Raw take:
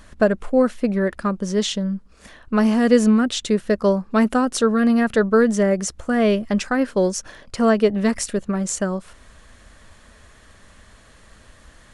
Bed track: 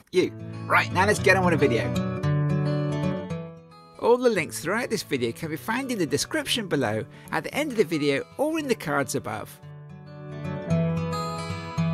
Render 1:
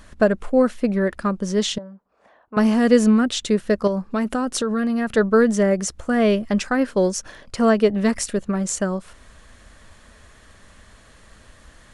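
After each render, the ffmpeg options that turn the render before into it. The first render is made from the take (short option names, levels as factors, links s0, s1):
-filter_complex "[0:a]asettb=1/sr,asplit=3[s0][s1][s2];[s0]atrim=end=1.784[s3];[s1]atrim=start=1.78:end=2.57,asetpts=PTS-STARTPTS,afade=t=in:d=0.004:c=qsin,afade=t=out:st=0.786:d=0.004:c=qsin,bandpass=f=750:t=q:w=2[s4];[s2]atrim=start=2.566[s5];[s3][s4]acrossfade=d=0.004:c1=hsin:c2=qsin[s6];[s6][s5]acrossfade=d=0.004:c1=qsin:c2=hsin,asettb=1/sr,asplit=3[s7][s8][s9];[s7]atrim=end=3.874[s10];[s8]atrim=start=3.87:end=5.17,asetpts=PTS-STARTPTS,afade=t=in:d=0.004:c=qsin,afade=t=out:st=1.296:d=0.004:c=qsin,acompressor=threshold=0.126:ratio=6:attack=3.2:release=140:knee=1:detection=peak[s11];[s9]atrim=start=5.166[s12];[s10][s11]acrossfade=d=0.004:c1=hsin:c2=qsin[s13];[s13][s12]acrossfade=d=0.004:c1=qsin:c2=hsin"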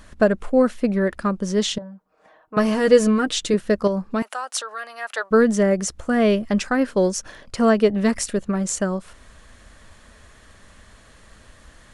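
-filter_complex "[0:a]asettb=1/sr,asplit=3[s0][s1][s2];[s0]atrim=end=1.814[s3];[s1]atrim=start=1.81:end=3.54,asetpts=PTS-STARTPTS,afade=t=in:d=0.004:c=qsin,afade=t=out:st=1.726:d=0.004:c=qsin,aecho=1:1:6.4:0.61,atrim=end_sample=76293[s4];[s2]atrim=start=3.536[s5];[s3][s4]acrossfade=d=0.004:c1=hsin:c2=qsin[s6];[s6][s5]acrossfade=d=0.004:c1=qsin:c2=hsin,asettb=1/sr,asplit=3[s7][s8][s9];[s7]atrim=end=4.224[s10];[s8]atrim=start=4.22:end=5.31,asetpts=PTS-STARTPTS,afade=t=in:d=0.004:c=qsin,afade=t=out:st=1.086:d=0.004:c=qsin,highpass=f=690:w=0.5412,highpass=f=690:w=1.3066[s11];[s9]atrim=start=5.306[s12];[s10][s11]acrossfade=d=0.004:c1=hsin:c2=qsin[s13];[s13][s12]acrossfade=d=0.004:c1=qsin:c2=hsin"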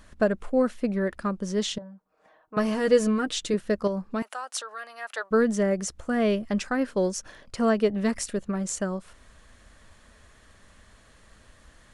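-af "volume=0.501"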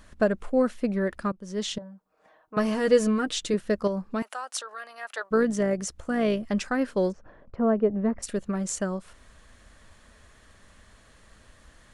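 -filter_complex "[0:a]asettb=1/sr,asplit=3[s0][s1][s2];[s0]atrim=end=4.574[s3];[s1]atrim=start=4.57:end=6.39,asetpts=PTS-STARTPTS,afade=t=in:d=0.004:c=qsin,afade=t=out:st=1.816:d=0.004:c=qsin,tremolo=f=56:d=0.261[s4];[s2]atrim=start=6.386[s5];[s3][s4]acrossfade=d=0.004:c1=hsin:c2=qsin[s6];[s6][s5]acrossfade=d=0.004:c1=qsin:c2=hsin,asplit=3[s7][s8][s9];[s7]afade=t=out:st=7.11:d=0.02[s10];[s8]lowpass=1000,afade=t=in:st=7.11:d=0.02,afade=t=out:st=8.22:d=0.02[s11];[s9]afade=t=in:st=8.22:d=0.02[s12];[s10][s11][s12]amix=inputs=3:normalize=0,asplit=2[s13][s14];[s13]atrim=end=1.32,asetpts=PTS-STARTPTS,afade=t=out:st=1.316:d=0.004:c=hsin:silence=0.0944061[s15];[s14]atrim=start=1.32,asetpts=PTS-STARTPTS,afade=t=in:d=0.44:silence=0.0944061[s16];[s15][s16]concat=n=2:v=0:a=1"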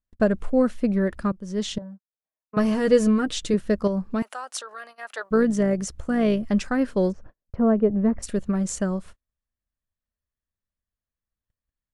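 -af "agate=range=0.00708:threshold=0.00631:ratio=16:detection=peak,lowshelf=f=230:g=9.5"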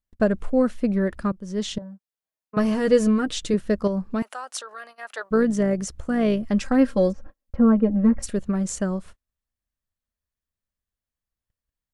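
-filter_complex "[0:a]asettb=1/sr,asplit=3[s0][s1][s2];[s0]atrim=end=6.624[s3];[s1]atrim=start=6.62:end=8.29,asetpts=PTS-STARTPTS,afade=t=in:d=0.004:c=qsin,afade=t=out:st=1.666:d=0.004:c=qsin,aecho=1:1:3.7:0.85,atrim=end_sample=73647[s4];[s2]atrim=start=8.286[s5];[s3][s4]acrossfade=d=0.004:c1=hsin:c2=qsin[s6];[s6][s5]acrossfade=d=0.004:c1=qsin:c2=hsin"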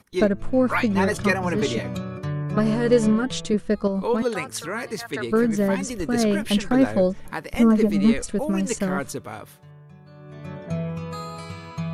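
-filter_complex "[1:a]volume=0.631[s0];[0:a][s0]amix=inputs=2:normalize=0"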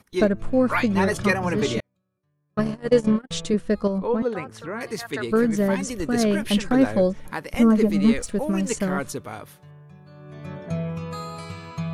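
-filter_complex "[0:a]asettb=1/sr,asplit=3[s0][s1][s2];[s0]atrim=end=1.804[s3];[s1]atrim=start=1.8:end=3.31,asetpts=PTS-STARTPTS,afade=t=in:d=0.004:c=qsin,afade=t=out:st=1.506:d=0.004:c=qsin,agate=range=0.00562:threshold=0.1:ratio=16:release=100:detection=peak[s4];[s2]atrim=start=3.306[s5];[s3][s4]acrossfade=d=0.004:c1=hsin:c2=qsin[s6];[s6][s5]acrossfade=d=0.004:c1=qsin:c2=hsin,asettb=1/sr,asplit=3[s7][s8][s9];[s7]atrim=end=3.984[s10];[s8]atrim=start=3.98:end=4.81,asetpts=PTS-STARTPTS,afade=t=in:d=0.004:c=qsin,afade=t=out:st=0.826:d=0.004:c=qsin,lowpass=f=1100:p=1[s11];[s9]atrim=start=4.806[s12];[s10][s11]acrossfade=d=0.004:c1=hsin:c2=qsin[s13];[s13][s12]acrossfade=d=0.004:c1=qsin:c2=hsin,asettb=1/sr,asplit=3[s14][s15][s16];[s14]atrim=end=7.964[s17];[s15]atrim=start=7.96:end=8.68,asetpts=PTS-STARTPTS,afade=t=in:d=0.004:c=qsin,afade=t=out:st=0.716:d=0.004:c=qsin,aeval=exprs='sgn(val(0))*max(abs(val(0))-0.00211,0)':c=same[s18];[s16]atrim=start=8.676[s19];[s17][s18]acrossfade=d=0.004:c1=hsin:c2=qsin[s20];[s20][s19]acrossfade=d=0.004:c1=qsin:c2=hsin"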